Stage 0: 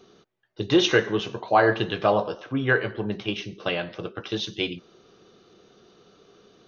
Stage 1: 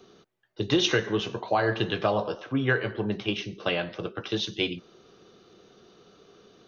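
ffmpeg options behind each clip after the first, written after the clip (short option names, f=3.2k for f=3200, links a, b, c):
-filter_complex "[0:a]acrossover=split=170|3000[a][b][c];[b]acompressor=threshold=-21dB:ratio=6[d];[a][d][c]amix=inputs=3:normalize=0"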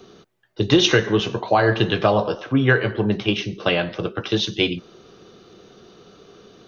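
-af "lowshelf=f=190:g=3.5,volume=7dB"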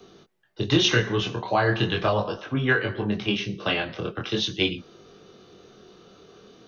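-filter_complex "[0:a]acrossover=split=370|630[a][b][c];[b]acompressor=threshold=-36dB:ratio=6[d];[a][d][c]amix=inputs=3:normalize=0,flanger=delay=20:depth=5.8:speed=0.4"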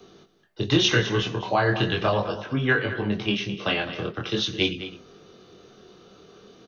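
-af "aecho=1:1:210:0.237"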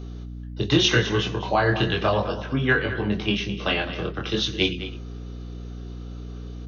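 -af "aeval=exprs='val(0)+0.0178*(sin(2*PI*60*n/s)+sin(2*PI*2*60*n/s)/2+sin(2*PI*3*60*n/s)/3+sin(2*PI*4*60*n/s)/4+sin(2*PI*5*60*n/s)/5)':c=same,volume=1dB"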